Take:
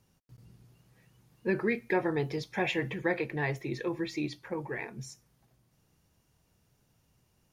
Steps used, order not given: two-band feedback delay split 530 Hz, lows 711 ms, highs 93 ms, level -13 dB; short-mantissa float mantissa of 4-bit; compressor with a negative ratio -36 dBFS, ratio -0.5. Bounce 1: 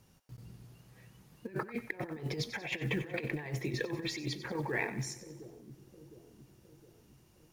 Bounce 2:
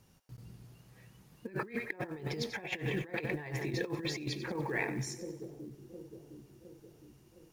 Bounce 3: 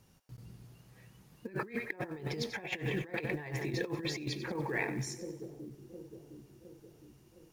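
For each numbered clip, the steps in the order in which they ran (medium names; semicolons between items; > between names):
compressor with a negative ratio > two-band feedback delay > short-mantissa float; two-band feedback delay > compressor with a negative ratio > short-mantissa float; two-band feedback delay > short-mantissa float > compressor with a negative ratio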